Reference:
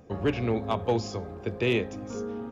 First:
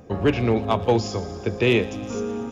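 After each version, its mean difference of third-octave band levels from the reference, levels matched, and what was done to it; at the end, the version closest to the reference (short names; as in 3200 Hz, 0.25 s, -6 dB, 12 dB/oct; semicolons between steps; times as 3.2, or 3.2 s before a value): 1.0 dB: thin delay 0.117 s, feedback 75%, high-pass 4200 Hz, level -12 dB; gain +6.5 dB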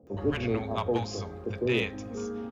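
4.5 dB: three bands offset in time mids, lows, highs 30/70 ms, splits 170/680 Hz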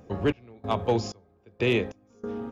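7.5 dB: step gate "xx..xxx..." 94 bpm -24 dB; gain +1.5 dB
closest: first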